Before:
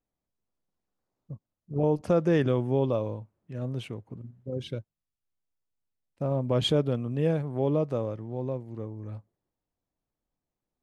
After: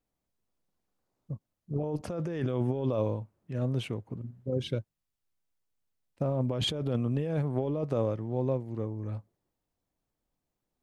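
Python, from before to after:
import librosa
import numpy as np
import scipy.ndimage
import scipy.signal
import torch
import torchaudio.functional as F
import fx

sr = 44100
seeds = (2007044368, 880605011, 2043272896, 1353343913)

y = fx.over_compress(x, sr, threshold_db=-29.0, ratio=-1.0)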